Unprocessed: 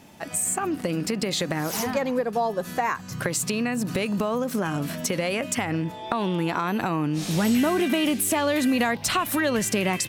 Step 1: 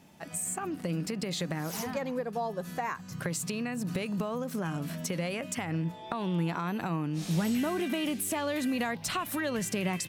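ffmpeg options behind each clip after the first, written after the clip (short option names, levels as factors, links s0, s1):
-af "equalizer=f=170:t=o:w=0.24:g=8.5,volume=0.376"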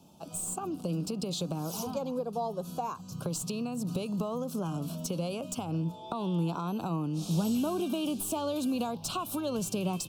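-filter_complex "[0:a]acrossover=split=330|540|5100[s0][s1][s2][s3];[s3]aeval=exprs='clip(val(0),-1,0.0141)':c=same[s4];[s0][s1][s2][s4]amix=inputs=4:normalize=0,asuperstop=centerf=1900:order=4:qfactor=1.1"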